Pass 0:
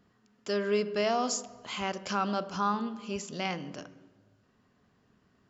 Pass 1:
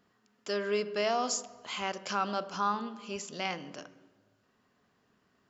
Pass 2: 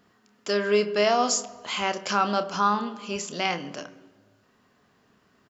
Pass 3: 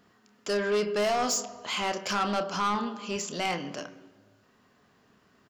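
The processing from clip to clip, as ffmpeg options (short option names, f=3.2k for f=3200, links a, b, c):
-af "lowshelf=f=230:g=-10.5"
-filter_complex "[0:a]asplit=2[a][b];[b]adelay=29,volume=-11.5dB[c];[a][c]amix=inputs=2:normalize=0,volume=7.5dB"
-af "asoftclip=type=tanh:threshold=-22dB"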